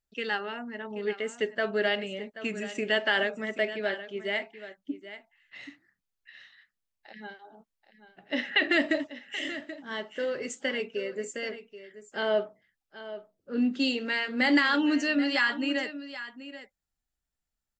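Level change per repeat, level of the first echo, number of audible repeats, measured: repeats not evenly spaced, −13.5 dB, 1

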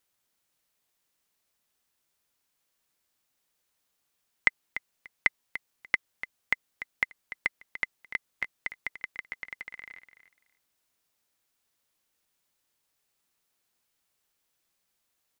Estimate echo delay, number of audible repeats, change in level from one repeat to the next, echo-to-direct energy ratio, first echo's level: 293 ms, 2, −15.0 dB, −13.0 dB, −13.0 dB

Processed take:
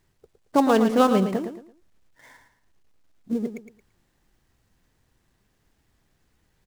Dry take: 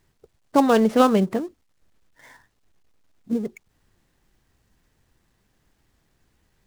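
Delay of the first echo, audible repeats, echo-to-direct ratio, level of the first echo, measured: 112 ms, 3, −8.0 dB, −8.5 dB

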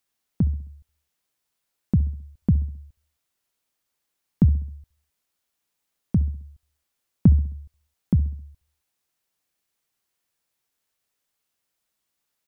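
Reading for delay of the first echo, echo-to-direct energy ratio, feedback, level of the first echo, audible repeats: 66 ms, −19.0 dB, 50%, −20.0 dB, 3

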